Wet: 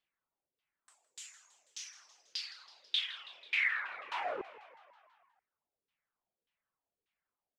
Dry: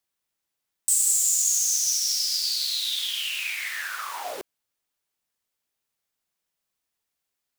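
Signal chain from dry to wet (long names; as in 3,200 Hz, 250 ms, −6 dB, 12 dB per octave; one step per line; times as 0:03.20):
downward compressor 4 to 1, threshold −25 dBFS, peak gain reduction 6.5 dB
auto-filter low-pass saw down 1.7 Hz 420–3,300 Hz
reverb reduction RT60 0.77 s
on a send: echo with shifted repeats 163 ms, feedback 64%, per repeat +63 Hz, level −17 dB
on the sum: level −3.5 dB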